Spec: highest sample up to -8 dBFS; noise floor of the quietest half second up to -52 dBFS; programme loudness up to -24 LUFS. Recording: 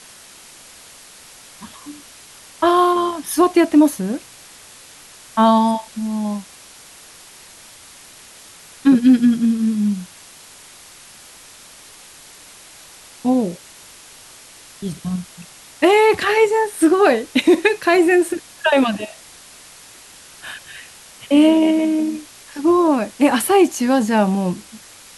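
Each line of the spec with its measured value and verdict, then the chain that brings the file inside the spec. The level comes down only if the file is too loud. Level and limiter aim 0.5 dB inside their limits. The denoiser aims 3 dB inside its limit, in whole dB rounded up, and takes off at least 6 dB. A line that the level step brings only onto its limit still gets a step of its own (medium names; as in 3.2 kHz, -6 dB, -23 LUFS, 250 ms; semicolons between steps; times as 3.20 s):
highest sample -4.0 dBFS: fail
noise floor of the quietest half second -43 dBFS: fail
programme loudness -16.5 LUFS: fail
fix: noise reduction 6 dB, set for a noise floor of -43 dBFS; trim -8 dB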